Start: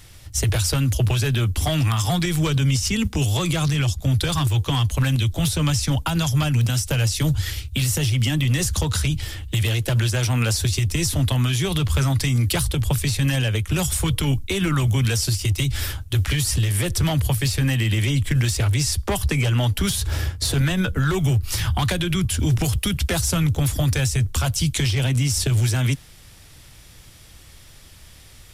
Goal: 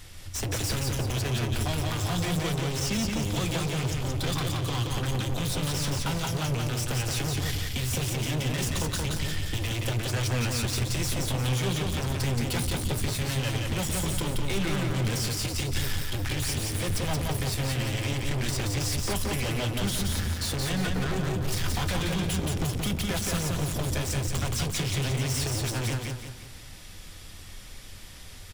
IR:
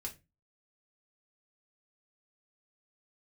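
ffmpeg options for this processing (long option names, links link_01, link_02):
-filter_complex "[0:a]bandreject=frequency=60:width_type=h:width=6,bandreject=frequency=120:width_type=h:width=6,bandreject=frequency=180:width_type=h:width=6,asoftclip=type=hard:threshold=-28dB,aecho=1:1:175|350|525|700|875:0.708|0.29|0.119|0.0488|0.02,asplit=2[link_01][link_02];[1:a]atrim=start_sample=2205,lowpass=8700[link_03];[link_02][link_03]afir=irnorm=-1:irlink=0,volume=-5.5dB[link_04];[link_01][link_04]amix=inputs=2:normalize=0,volume=-2.5dB"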